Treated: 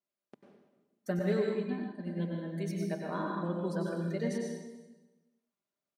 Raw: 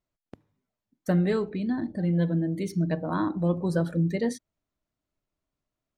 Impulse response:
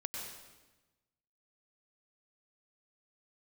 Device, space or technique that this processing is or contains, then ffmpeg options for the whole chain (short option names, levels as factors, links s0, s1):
bathroom: -filter_complex "[1:a]atrim=start_sample=2205[s0];[0:a][s0]afir=irnorm=-1:irlink=0,highpass=230,asettb=1/sr,asplit=3[s1][s2][s3];[s1]atrim=end=1.194[s4];[s2]atrim=start=1.19:end=2.34,asetpts=PTS-STARTPTS,afade=t=in:d=0.004:c=qsin,afade=t=out:st=1.146:d=0.004:c=qsin,agate=range=0.0224:threshold=0.0447:ratio=3:detection=peak[s5];[s3]atrim=start=2.336[s6];[s4][s5]acrossfade=d=0.004:c1=hsin:c2=qsin[s7];[s7][s6]acrossfade=d=0.004:c1=qsin:c2=hsin,aecho=1:1:5:0.47,adynamicequalizer=threshold=0.00224:dfrequency=6800:dqfactor=0.7:tfrequency=6800:tqfactor=0.7:attack=5:release=100:ratio=0.375:range=2:mode=cutabove:tftype=highshelf,volume=0.562"